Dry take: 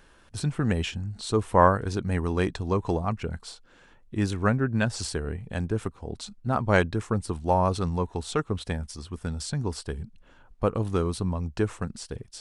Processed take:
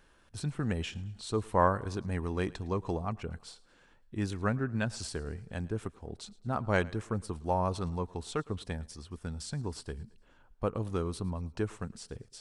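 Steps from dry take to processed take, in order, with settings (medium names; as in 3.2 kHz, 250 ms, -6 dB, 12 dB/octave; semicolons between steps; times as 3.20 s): thinning echo 110 ms, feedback 50%, high-pass 190 Hz, level -22 dB; trim -7 dB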